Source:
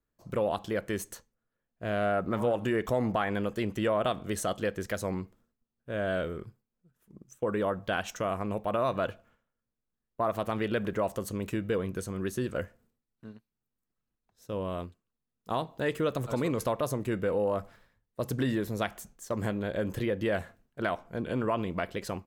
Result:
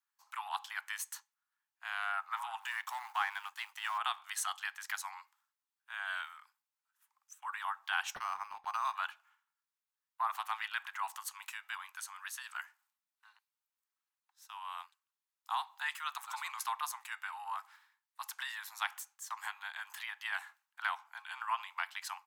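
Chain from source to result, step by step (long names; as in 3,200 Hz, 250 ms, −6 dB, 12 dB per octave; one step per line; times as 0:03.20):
0:02.60–0:03.98: mu-law and A-law mismatch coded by A
Butterworth high-pass 810 Hz 96 dB per octave
0:08.15–0:08.95: linearly interpolated sample-rate reduction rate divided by 6×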